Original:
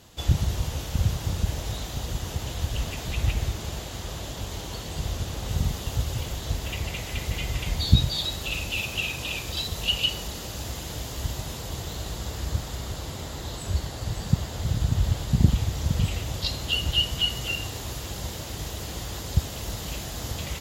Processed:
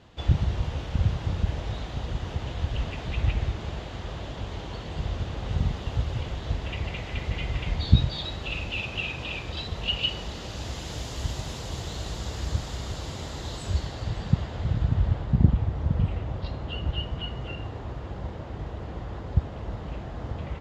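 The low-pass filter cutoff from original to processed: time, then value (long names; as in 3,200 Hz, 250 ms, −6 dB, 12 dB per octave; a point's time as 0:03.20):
0:09.91 2,900 Hz
0:10.97 6,700 Hz
0:13.62 6,700 Hz
0:14.15 3,500 Hz
0:15.51 1,400 Hz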